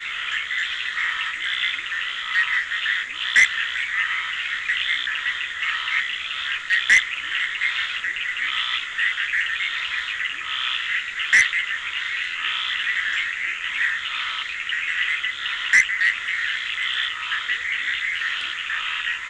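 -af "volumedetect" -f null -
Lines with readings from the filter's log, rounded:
mean_volume: -24.1 dB
max_volume: -4.4 dB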